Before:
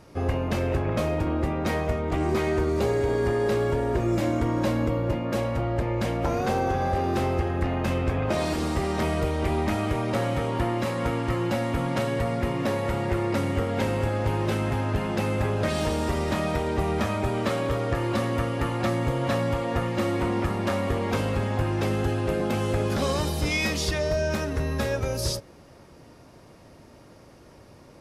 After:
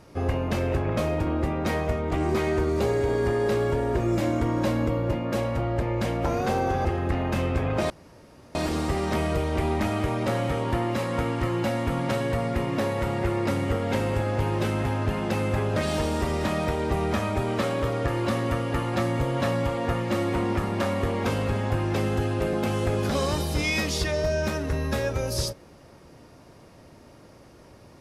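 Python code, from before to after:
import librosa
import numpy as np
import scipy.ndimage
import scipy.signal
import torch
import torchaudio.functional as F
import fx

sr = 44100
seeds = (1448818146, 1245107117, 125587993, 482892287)

y = fx.edit(x, sr, fx.cut(start_s=6.85, length_s=0.52),
    fx.insert_room_tone(at_s=8.42, length_s=0.65), tone=tone)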